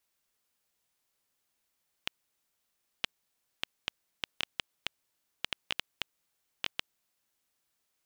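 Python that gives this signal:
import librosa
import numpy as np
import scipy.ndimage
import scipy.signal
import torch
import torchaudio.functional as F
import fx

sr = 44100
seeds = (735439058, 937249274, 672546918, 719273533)

y = fx.geiger_clicks(sr, seeds[0], length_s=5.25, per_s=3.6, level_db=-12.0)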